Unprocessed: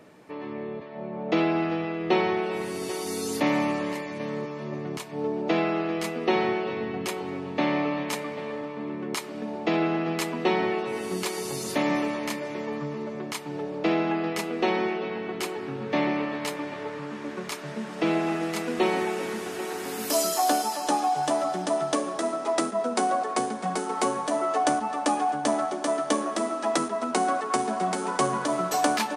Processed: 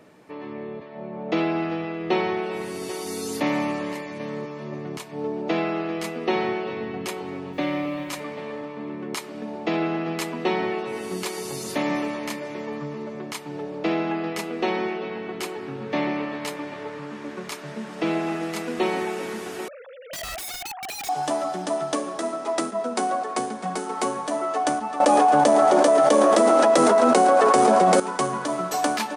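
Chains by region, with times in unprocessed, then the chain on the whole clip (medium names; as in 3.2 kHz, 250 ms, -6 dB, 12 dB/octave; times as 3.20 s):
7.52–8.19 s: comb of notches 220 Hz + added noise pink -60 dBFS
19.68–21.09 s: formants replaced by sine waves + integer overflow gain 29 dB
25.00–28.00 s: peaking EQ 530 Hz +12 dB 0.48 oct + frequency-shifting echo 112 ms, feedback 51%, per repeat +130 Hz, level -17 dB + level flattener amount 100%
whole clip: none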